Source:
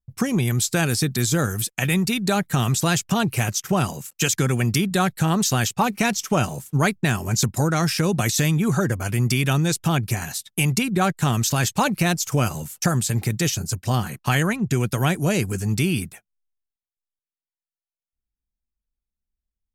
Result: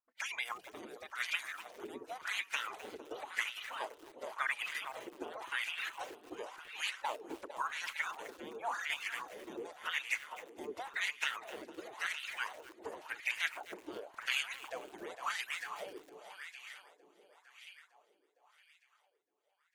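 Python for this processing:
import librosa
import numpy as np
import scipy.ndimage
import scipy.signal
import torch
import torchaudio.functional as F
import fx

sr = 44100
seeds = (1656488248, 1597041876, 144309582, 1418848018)

p1 = fx.dereverb_blind(x, sr, rt60_s=0.92)
p2 = fx.spec_gate(p1, sr, threshold_db=-25, keep='weak')
p3 = p2 + fx.echo_thinned(p2, sr, ms=456, feedback_pct=65, hz=160.0, wet_db=-8.5, dry=0)
p4 = fx.wah_lfo(p3, sr, hz=0.92, low_hz=330.0, high_hz=2500.0, q=4.1)
p5 = fx.echo_crushed(p4, sr, ms=257, feedback_pct=35, bits=9, wet_db=-15.0)
y = p5 * 10.0 ** (11.0 / 20.0)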